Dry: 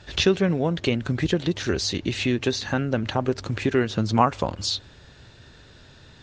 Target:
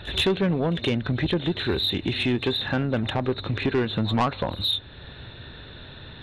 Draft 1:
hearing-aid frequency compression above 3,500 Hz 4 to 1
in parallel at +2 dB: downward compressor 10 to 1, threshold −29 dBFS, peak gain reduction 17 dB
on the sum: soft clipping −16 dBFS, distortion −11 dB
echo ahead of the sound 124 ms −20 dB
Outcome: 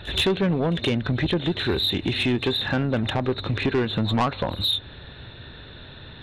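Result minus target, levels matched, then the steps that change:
downward compressor: peak gain reduction −8 dB
change: downward compressor 10 to 1, threshold −38 dBFS, peak gain reduction 25 dB

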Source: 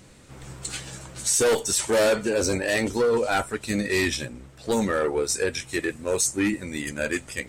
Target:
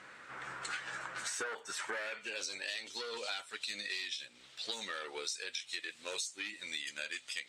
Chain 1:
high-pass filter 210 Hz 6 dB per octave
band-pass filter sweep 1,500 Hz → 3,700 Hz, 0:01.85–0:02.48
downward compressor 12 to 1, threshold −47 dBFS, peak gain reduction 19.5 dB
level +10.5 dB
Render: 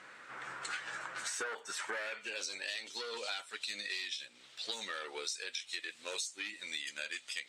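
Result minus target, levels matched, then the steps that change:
125 Hz band −4.0 dB
change: high-pass filter 67 Hz 6 dB per octave

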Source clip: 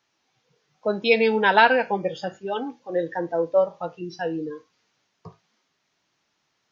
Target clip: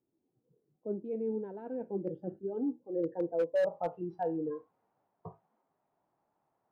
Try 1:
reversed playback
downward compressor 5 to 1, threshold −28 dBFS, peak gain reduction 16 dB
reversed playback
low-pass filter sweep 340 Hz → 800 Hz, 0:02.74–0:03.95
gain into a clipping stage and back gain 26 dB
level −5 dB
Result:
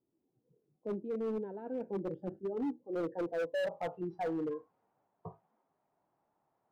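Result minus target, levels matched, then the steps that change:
gain into a clipping stage and back: distortion +11 dB
change: gain into a clipping stage and back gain 19 dB

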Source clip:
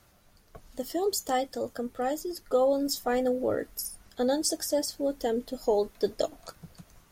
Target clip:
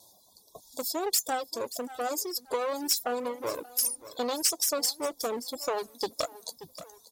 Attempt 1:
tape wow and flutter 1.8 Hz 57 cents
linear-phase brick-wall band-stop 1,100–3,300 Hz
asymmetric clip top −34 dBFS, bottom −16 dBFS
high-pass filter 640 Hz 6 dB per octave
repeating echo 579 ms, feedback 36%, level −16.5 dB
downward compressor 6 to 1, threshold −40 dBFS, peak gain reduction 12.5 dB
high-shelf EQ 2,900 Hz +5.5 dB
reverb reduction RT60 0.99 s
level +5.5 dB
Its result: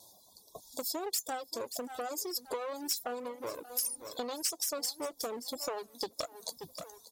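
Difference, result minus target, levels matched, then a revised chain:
downward compressor: peak gain reduction +7.5 dB
tape wow and flutter 1.8 Hz 57 cents
linear-phase brick-wall band-stop 1,100–3,300 Hz
asymmetric clip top −34 dBFS, bottom −16 dBFS
high-pass filter 640 Hz 6 dB per octave
repeating echo 579 ms, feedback 36%, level −16.5 dB
downward compressor 6 to 1, threshold −31 dBFS, peak gain reduction 5 dB
high-shelf EQ 2,900 Hz +5.5 dB
reverb reduction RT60 0.99 s
level +5.5 dB

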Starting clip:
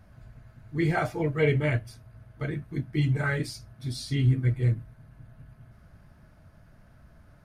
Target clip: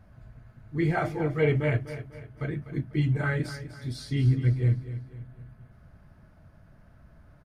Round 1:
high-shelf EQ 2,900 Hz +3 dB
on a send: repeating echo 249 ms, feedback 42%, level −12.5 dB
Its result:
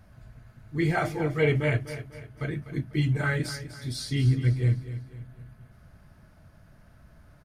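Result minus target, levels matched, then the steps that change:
8,000 Hz band +8.0 dB
change: high-shelf EQ 2,900 Hz −6.5 dB

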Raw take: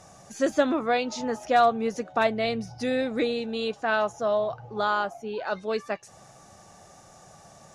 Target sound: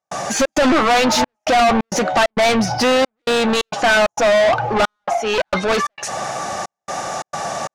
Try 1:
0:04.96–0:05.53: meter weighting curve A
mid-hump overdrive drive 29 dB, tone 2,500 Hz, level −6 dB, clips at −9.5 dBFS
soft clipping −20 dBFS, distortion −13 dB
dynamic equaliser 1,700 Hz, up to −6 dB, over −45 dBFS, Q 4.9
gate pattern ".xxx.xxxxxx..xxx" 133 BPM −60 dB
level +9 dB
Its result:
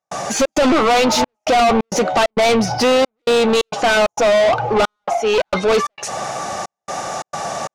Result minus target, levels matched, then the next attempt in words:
2,000 Hz band −2.5 dB
0:04.96–0:05.53: meter weighting curve A
mid-hump overdrive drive 29 dB, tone 2,500 Hz, level −6 dB, clips at −9.5 dBFS
soft clipping −20 dBFS, distortion −13 dB
dynamic equaliser 440 Hz, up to −6 dB, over −45 dBFS, Q 4.9
gate pattern ".xxx.xxxxxx..xxx" 133 BPM −60 dB
level +9 dB

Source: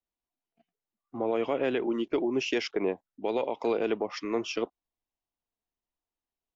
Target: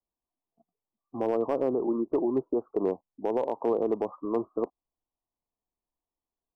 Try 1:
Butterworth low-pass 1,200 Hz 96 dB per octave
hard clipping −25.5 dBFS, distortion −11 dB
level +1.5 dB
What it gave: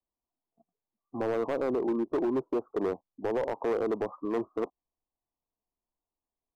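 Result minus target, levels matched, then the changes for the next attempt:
hard clipping: distortion +15 dB
change: hard clipping −19.5 dBFS, distortion −26 dB

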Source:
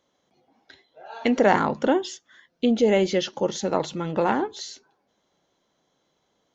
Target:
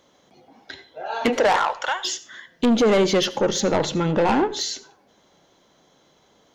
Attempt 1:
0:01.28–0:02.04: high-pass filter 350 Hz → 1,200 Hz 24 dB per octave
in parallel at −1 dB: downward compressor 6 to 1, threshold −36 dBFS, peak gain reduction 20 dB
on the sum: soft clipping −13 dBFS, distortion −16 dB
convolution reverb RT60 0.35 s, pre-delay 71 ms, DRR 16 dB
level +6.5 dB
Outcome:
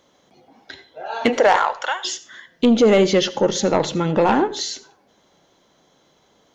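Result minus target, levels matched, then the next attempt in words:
soft clipping: distortion −7 dB
0:01.28–0:02.04: high-pass filter 350 Hz → 1,200 Hz 24 dB per octave
in parallel at −1 dB: downward compressor 6 to 1, threshold −36 dBFS, peak gain reduction 20 dB
on the sum: soft clipping −20 dBFS, distortion −9 dB
convolution reverb RT60 0.35 s, pre-delay 71 ms, DRR 16 dB
level +6.5 dB

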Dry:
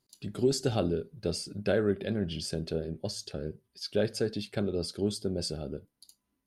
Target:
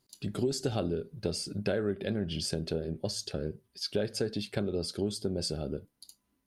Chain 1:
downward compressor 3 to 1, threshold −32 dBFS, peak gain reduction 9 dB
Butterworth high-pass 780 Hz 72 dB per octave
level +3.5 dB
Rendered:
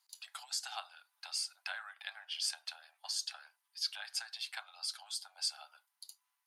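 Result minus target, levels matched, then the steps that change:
1,000 Hz band +3.0 dB
remove: Butterworth high-pass 780 Hz 72 dB per octave

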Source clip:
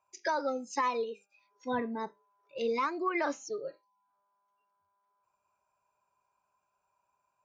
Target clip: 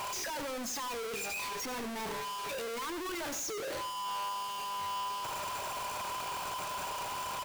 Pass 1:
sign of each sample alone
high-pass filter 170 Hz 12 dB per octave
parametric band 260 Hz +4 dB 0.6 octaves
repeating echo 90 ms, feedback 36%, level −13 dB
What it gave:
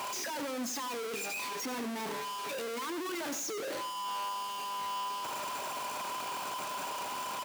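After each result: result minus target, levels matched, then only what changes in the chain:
125 Hz band −4.0 dB; 250 Hz band +3.0 dB
remove: high-pass filter 170 Hz 12 dB per octave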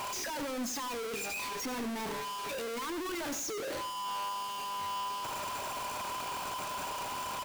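250 Hz band +3.5 dB
change: parametric band 260 Hz −2 dB 0.6 octaves

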